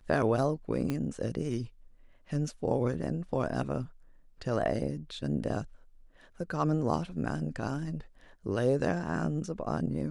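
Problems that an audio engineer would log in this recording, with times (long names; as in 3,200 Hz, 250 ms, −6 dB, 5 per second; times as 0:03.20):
0:00.90: click −19 dBFS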